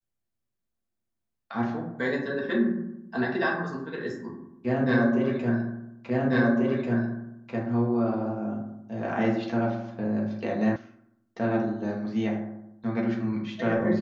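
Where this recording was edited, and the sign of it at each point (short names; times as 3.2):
6.1 repeat of the last 1.44 s
10.76 sound cut off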